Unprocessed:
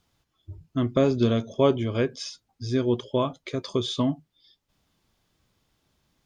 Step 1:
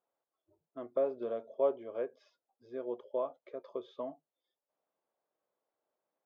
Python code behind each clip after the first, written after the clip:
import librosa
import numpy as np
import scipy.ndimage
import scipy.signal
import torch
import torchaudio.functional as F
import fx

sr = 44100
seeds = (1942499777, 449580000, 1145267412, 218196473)

y = fx.ladder_bandpass(x, sr, hz=660.0, resonance_pct=45)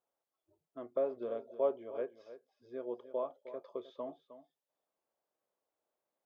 y = x + 10.0 ** (-13.5 / 20.0) * np.pad(x, (int(311 * sr / 1000.0), 0))[:len(x)]
y = y * librosa.db_to_amplitude(-2.0)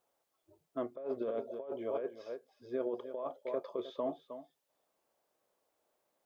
y = fx.over_compress(x, sr, threshold_db=-41.0, ratio=-1.0)
y = y * librosa.db_to_amplitude(4.5)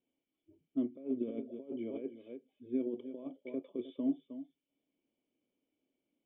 y = fx.formant_cascade(x, sr, vowel='i')
y = y * librosa.db_to_amplitude(11.5)